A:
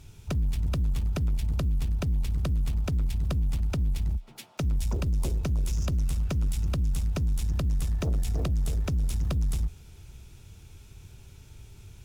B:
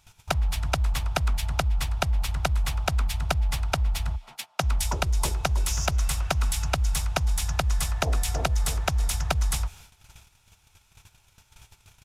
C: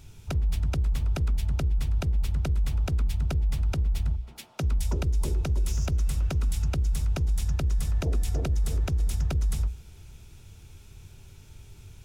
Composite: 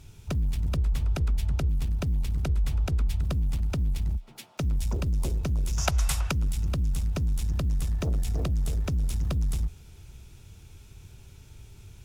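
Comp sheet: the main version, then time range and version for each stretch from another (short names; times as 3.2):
A
0.76–1.69 from C
2.44–3.21 from C
5.78–6.31 from B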